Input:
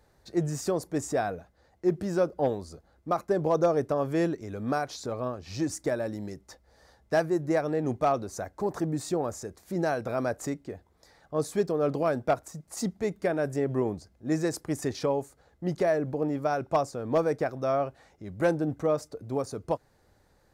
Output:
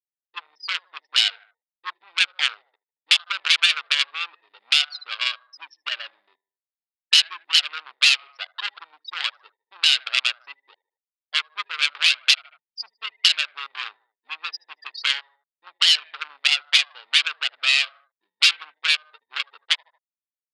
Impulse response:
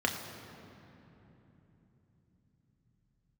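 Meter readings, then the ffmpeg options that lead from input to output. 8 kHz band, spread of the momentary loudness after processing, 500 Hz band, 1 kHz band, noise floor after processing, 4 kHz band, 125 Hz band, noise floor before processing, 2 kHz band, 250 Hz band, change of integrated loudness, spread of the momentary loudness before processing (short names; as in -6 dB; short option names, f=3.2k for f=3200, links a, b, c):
+9.0 dB, 18 LU, under -25 dB, -4.0 dB, under -85 dBFS, +29.5 dB, under -40 dB, -65 dBFS, +16.5 dB, under -40 dB, +9.0 dB, 9 LU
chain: -filter_complex "[0:a]afftfilt=real='re*gte(hypot(re,im),0.0316)':imag='im*gte(hypot(re,im),0.0316)':win_size=1024:overlap=0.75,afwtdn=0.0158,equalizer=f=2.1k:w=2.3:g=9.5,asplit=2[a][b];[b]adelay=76,lowpass=f=3.4k:p=1,volume=-23dB,asplit=2[c][d];[d]adelay=76,lowpass=f=3.4k:p=1,volume=0.48,asplit=2[e][f];[f]adelay=76,lowpass=f=3.4k:p=1,volume=0.48[g];[a][c][e][g]amix=inputs=4:normalize=0,adynamicsmooth=sensitivity=4.5:basefreq=2.5k,aresample=11025,aeval=exprs='0.211*sin(PI/2*2.82*val(0)/0.211)':c=same,aresample=44100,aexciter=amount=11.1:drive=9.1:freq=2.8k,asoftclip=type=tanh:threshold=-7.5dB,acompressor=threshold=-21dB:ratio=6,asuperpass=centerf=3700:order=8:qfactor=0.51,volume=8.5dB"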